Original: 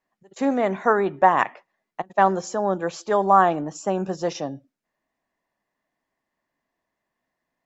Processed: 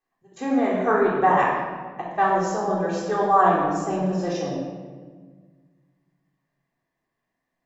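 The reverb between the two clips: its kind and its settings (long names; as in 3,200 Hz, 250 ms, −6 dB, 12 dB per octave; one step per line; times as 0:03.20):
rectangular room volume 1,500 cubic metres, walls mixed, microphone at 3.7 metres
level −7 dB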